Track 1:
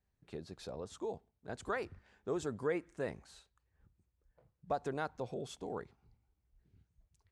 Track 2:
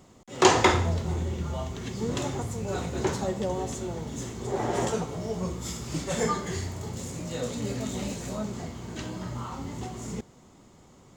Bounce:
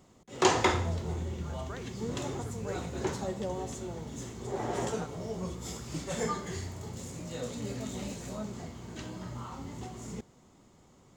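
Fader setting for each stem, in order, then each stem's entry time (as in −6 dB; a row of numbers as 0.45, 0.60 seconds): −7.5, −5.5 decibels; 0.00, 0.00 seconds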